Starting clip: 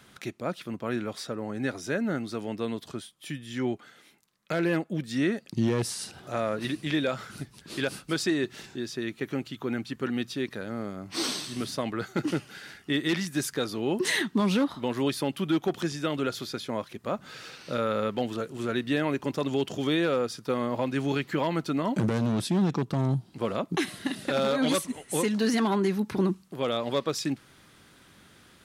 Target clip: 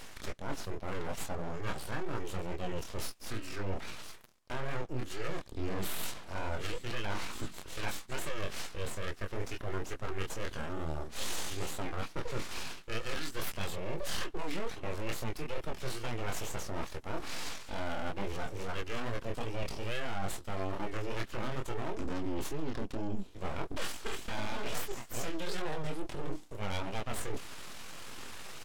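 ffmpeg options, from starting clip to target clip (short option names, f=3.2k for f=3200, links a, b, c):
-filter_complex "[0:a]highshelf=f=2.4k:g=2.5,areverse,acompressor=threshold=-44dB:ratio=4,areverse,aeval=exprs='abs(val(0))':c=same,flanger=delay=20:depth=5:speed=2.3,asetrate=35002,aresample=44100,atempo=1.25992,asplit=2[a][b];[b]aeval=exprs='clip(val(0),-1,0.00531)':c=same,volume=-7.5dB[c];[a][c]amix=inputs=2:normalize=0,volume=11.5dB"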